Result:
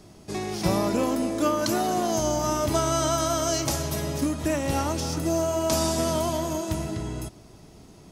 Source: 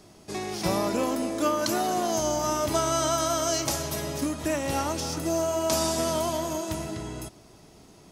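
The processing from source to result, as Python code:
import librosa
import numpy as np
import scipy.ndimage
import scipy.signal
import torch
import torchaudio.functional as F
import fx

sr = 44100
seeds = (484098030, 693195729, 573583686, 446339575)

y = fx.low_shelf(x, sr, hz=250.0, db=7.0)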